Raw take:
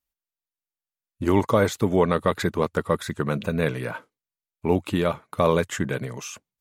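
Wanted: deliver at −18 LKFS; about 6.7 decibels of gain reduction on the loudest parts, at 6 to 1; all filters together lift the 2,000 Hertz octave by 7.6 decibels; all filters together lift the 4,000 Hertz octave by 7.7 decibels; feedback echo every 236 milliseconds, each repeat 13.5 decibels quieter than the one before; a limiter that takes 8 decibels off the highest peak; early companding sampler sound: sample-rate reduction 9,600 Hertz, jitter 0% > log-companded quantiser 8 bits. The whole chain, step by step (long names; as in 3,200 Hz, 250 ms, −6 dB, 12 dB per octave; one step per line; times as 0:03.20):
parametric band 2,000 Hz +8.5 dB
parametric band 4,000 Hz +6.5 dB
downward compressor 6 to 1, threshold −21 dBFS
brickwall limiter −14 dBFS
repeating echo 236 ms, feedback 21%, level −13.5 dB
sample-rate reduction 9,600 Hz, jitter 0%
log-companded quantiser 8 bits
level +11 dB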